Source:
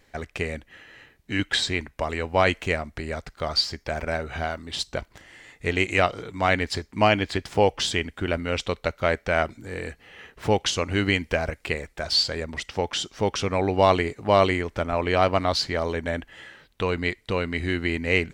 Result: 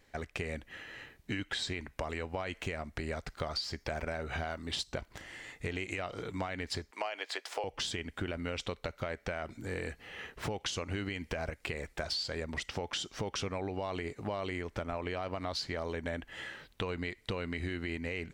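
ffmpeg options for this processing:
ffmpeg -i in.wav -filter_complex "[0:a]asettb=1/sr,asplit=3[link_01][link_02][link_03];[link_01]atrim=end=6.914[link_04];[link_02]atrim=start=6.91:end=7.64,asetpts=PTS-STARTPTS,afade=type=in:duration=0.004:curve=qsin,afade=type=out:start_time=0.726:duration=0.004:curve=qsin,highpass=frequency=490:width=0.5412,highpass=frequency=490:width=1.3066[link_05];[link_03]atrim=start=7.636[link_06];[link_04][link_05]acrossfade=duration=0.004:curve1=hsin:curve2=qsin[link_07];[link_07][link_06]acrossfade=duration=0.004:curve1=qsin:curve2=hsin,dynaudnorm=framelen=290:gausssize=3:maxgain=6.5dB,alimiter=limit=-11dB:level=0:latency=1:release=69,acompressor=threshold=-28dB:ratio=6,volume=-5.5dB" out.wav

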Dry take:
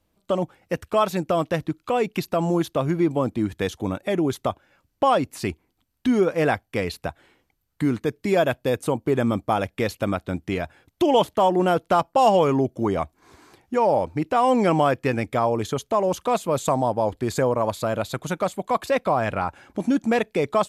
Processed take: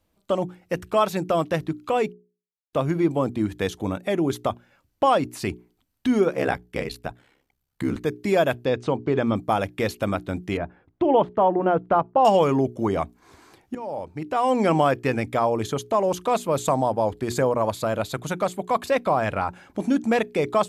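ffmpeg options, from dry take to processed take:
ffmpeg -i in.wav -filter_complex "[0:a]asettb=1/sr,asplit=3[link_01][link_02][link_03];[link_01]atrim=end=6.304[link_04];[link_02]atrim=start=6.3:end=7.96,asetpts=PTS-STARTPTS,afade=type=in:duration=0.004:curve=qsin,afade=type=out:start_time=1.656:duration=0.004:curve=qsin,aeval=exprs='val(0)*sin(2*PI*33*n/s)':channel_layout=same[link_05];[link_03]atrim=start=7.956[link_06];[link_04][link_05]acrossfade=duration=0.004:curve1=hsin:curve2=qsin[link_07];[link_07][link_06]acrossfade=duration=0.004:curve1=qsin:curve2=hsin,asettb=1/sr,asplit=3[link_08][link_09][link_10];[link_08]atrim=end=8.654[link_11];[link_09]atrim=start=8.65:end=9.36,asetpts=PTS-STARTPTS,afade=type=in:duration=0.004:curve=qsin,afade=type=out:start_time=0.706:duration=0.004:curve=qsin,lowpass=frequency=5500:width=0.5412,lowpass=frequency=5500:width=1.3066[link_12];[link_10]atrim=start=9.356[link_13];[link_11][link_12]acrossfade=duration=0.004:curve1=hsin:curve2=qsin[link_14];[link_14][link_13]acrossfade=duration=0.004:curve1=qsin:curve2=hsin,asettb=1/sr,asplit=3[link_15][link_16][link_17];[link_15]atrim=end=10.574[link_18];[link_16]atrim=start=10.57:end=12.25,asetpts=PTS-STARTPTS,afade=type=in:duration=0.004:curve=qsin,afade=type=out:start_time=1.676:duration=0.004:curve=qsin,lowpass=1500[link_19];[link_17]atrim=start=12.246[link_20];[link_18][link_19]acrossfade=duration=0.004:curve1=hsin:curve2=qsin[link_21];[link_21][link_20]acrossfade=duration=0.004:curve1=qsin:curve2=hsin,asplit=4[link_22][link_23][link_24][link_25];[link_22]atrim=end=2.13,asetpts=PTS-STARTPTS,afade=type=out:start_time=2.126:duration=0.004:curve=hsin[link_26];[link_23]atrim=start=2.13:end=2.73,asetpts=PTS-STARTPTS,volume=0[link_27];[link_24]atrim=start=2.73:end=13.75,asetpts=PTS-STARTPTS,afade=type=in:duration=0.004:curve=hsin,afade=type=out:start_time=11.016:duration=0.004:curve=hsin:silence=0.112202[link_28];[link_25]atrim=start=13.75,asetpts=PTS-STARTPTS,afade=type=in:duration=0.96:silence=0.112202[link_29];[link_26][link_27][link_28][link_29]concat=n=4:v=0:a=1,bandreject=frequency=60:width_type=h:width=6,bandreject=frequency=120:width_type=h:width=6,bandreject=frequency=180:width_type=h:width=6,bandreject=frequency=240:width_type=h:width=6,bandreject=frequency=300:width_type=h:width=6,bandreject=frequency=360:width_type=h:width=6,bandreject=frequency=420:width_type=h:width=6" out.wav

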